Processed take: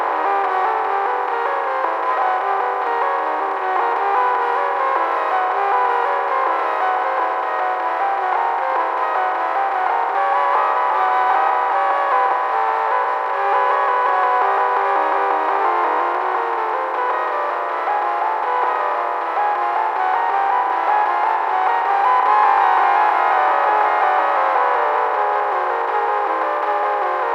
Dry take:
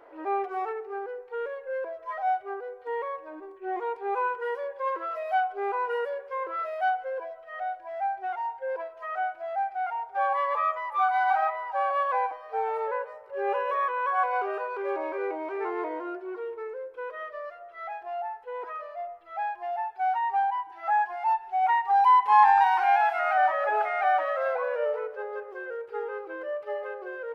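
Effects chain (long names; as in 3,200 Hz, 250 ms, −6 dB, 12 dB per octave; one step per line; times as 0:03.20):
compressor on every frequency bin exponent 0.2
0:12.33–0:13.45: low-shelf EQ 260 Hz −9 dB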